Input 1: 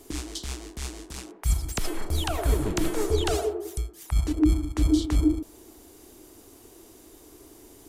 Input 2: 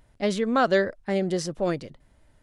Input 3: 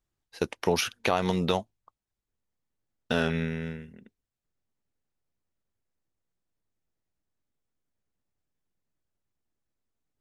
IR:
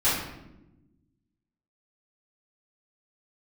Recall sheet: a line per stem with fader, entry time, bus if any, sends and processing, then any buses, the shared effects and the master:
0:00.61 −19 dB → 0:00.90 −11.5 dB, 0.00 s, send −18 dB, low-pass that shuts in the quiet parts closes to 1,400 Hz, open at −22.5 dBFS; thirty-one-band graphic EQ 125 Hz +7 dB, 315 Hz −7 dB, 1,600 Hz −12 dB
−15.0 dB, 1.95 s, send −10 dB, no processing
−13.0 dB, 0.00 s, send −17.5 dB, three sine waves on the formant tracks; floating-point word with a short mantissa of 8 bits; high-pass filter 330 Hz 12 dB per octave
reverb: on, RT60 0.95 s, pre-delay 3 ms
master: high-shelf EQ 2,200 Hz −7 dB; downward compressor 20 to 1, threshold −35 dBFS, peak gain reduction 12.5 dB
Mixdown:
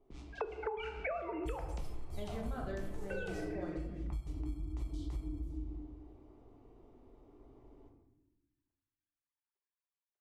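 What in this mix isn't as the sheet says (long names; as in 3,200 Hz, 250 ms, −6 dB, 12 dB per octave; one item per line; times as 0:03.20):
stem 1: send −18 dB → −12 dB
stem 3 −13.0 dB → −2.0 dB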